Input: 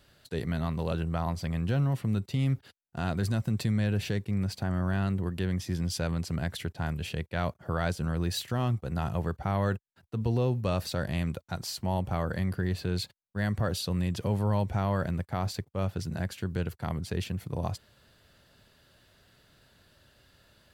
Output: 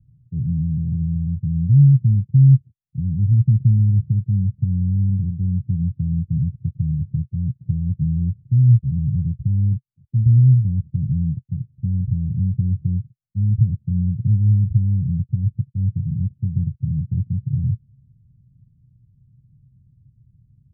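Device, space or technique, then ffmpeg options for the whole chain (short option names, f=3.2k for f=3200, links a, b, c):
the neighbour's flat through the wall: -af "lowpass=f=210:w=0.5412,lowpass=f=210:w=1.3066,equalizer=f=125:t=o:w=1:g=6,equalizer=f=250:t=o:w=1:g=-4,equalizer=f=500:t=o:w=1:g=-5,equalizer=f=1k:t=o:w=1:g=-9,equalizer=f=130:t=o:w=0.69:g=7,volume=6dB"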